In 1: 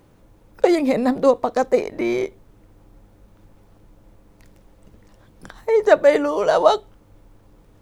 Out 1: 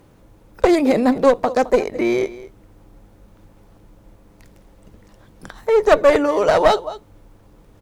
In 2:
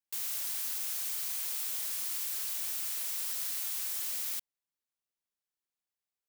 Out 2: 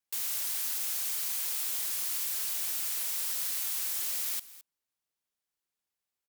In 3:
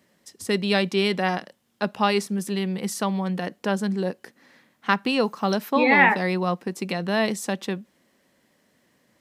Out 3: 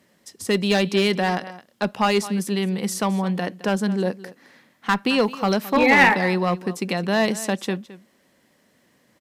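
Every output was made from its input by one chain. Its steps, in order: delay 215 ms -17.5 dB; one-sided clip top -15 dBFS; trim +3 dB

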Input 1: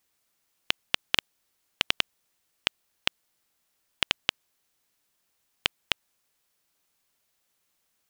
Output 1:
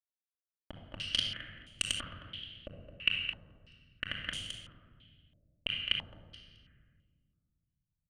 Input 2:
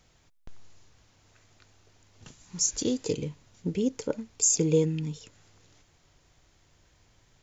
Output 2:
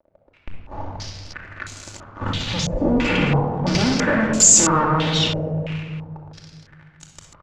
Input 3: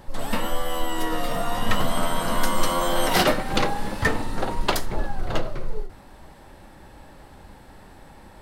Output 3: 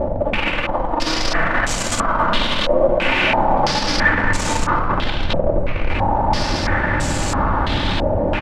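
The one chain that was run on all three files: in parallel at -9 dB: sine folder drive 19 dB, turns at -1 dBFS; on the sum: wow and flutter 80 cents; fuzz box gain 38 dB, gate -39 dBFS; feedback delay 215 ms, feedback 20%, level -11 dB; simulated room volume 2500 m³, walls mixed, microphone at 2.5 m; step-sequenced low-pass 3 Hz 600–7300 Hz; trim -9 dB

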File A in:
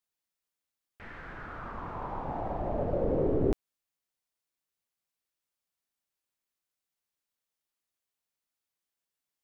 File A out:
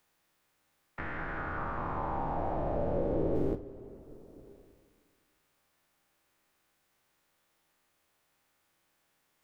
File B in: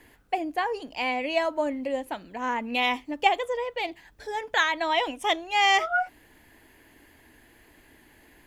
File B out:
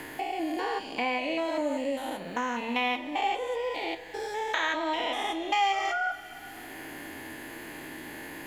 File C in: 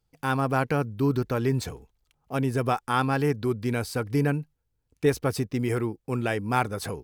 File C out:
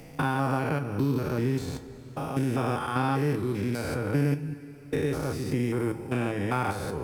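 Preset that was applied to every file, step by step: spectrogram pixelated in time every 200 ms; two-slope reverb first 0.21 s, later 1.8 s, from -18 dB, DRR 6.5 dB; three bands compressed up and down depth 70%

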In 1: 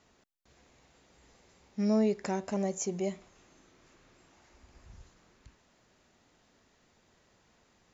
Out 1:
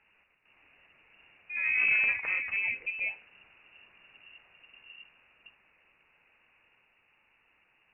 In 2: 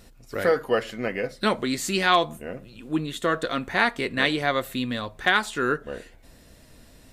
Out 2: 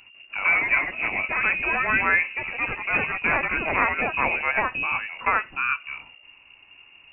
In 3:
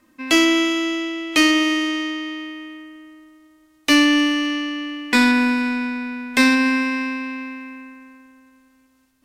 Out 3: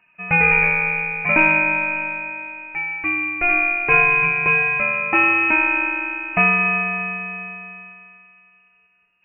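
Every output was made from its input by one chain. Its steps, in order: ever faster or slower copies 146 ms, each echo +3 st, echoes 3; frequency inversion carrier 2.8 kHz; trim -1 dB

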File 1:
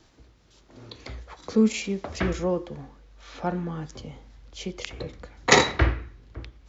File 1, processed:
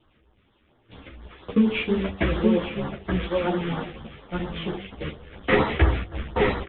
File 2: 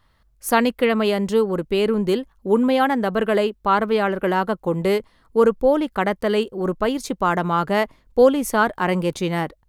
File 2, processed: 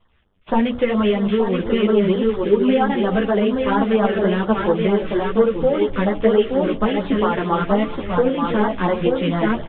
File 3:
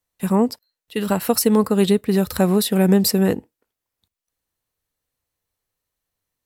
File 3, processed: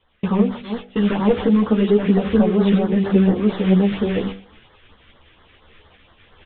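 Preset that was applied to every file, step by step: one-bit delta coder 32 kbps, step -29.5 dBFS; multi-tap echo 320/875 ms -16.5/-5 dB; compression, threshold -18 dBFS; gate -32 dBFS, range -30 dB; steep low-pass 3.5 kHz 96 dB/octave; LFO notch sine 4.3 Hz 760–2600 Hz; de-hum 48.52 Hz, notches 17; three-phase chorus; trim +8.5 dB

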